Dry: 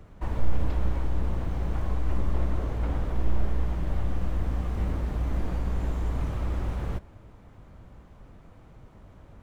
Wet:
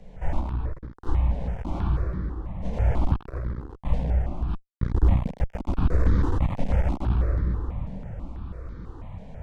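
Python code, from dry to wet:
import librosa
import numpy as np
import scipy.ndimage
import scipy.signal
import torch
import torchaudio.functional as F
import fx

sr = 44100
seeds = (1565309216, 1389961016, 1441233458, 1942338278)

y = fx.air_absorb(x, sr, metres=55.0)
y = fx.echo_multitap(y, sr, ms=(62, 178, 428), db=(-13.0, -4.0, -19.0))
y = 10.0 ** (-13.0 / 20.0) * np.tanh(y / 10.0 ** (-13.0 / 20.0))
y = fx.over_compress(y, sr, threshold_db=-25.0, ratio=-0.5)
y = fx.low_shelf(y, sr, hz=110.0, db=9.5, at=(4.54, 5.05))
y = fx.room_shoebox(y, sr, seeds[0], volume_m3=130.0, walls='hard', distance_m=0.74)
y = fx.clip_asym(y, sr, top_db=-18.5, bottom_db=-7.5)
y = fx.phaser_held(y, sr, hz=6.1, low_hz=340.0, high_hz=2700.0)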